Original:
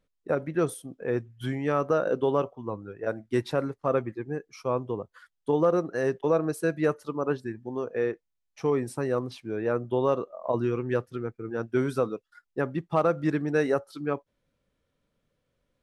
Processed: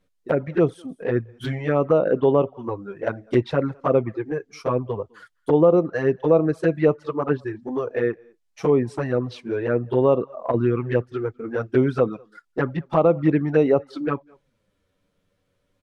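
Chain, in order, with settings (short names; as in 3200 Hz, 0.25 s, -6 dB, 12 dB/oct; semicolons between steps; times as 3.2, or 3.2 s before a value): outdoor echo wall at 35 m, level -29 dB; treble ducked by the level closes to 2300 Hz, closed at -22.5 dBFS; envelope flanger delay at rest 10.7 ms, full sweep at -20.5 dBFS; gain +8.5 dB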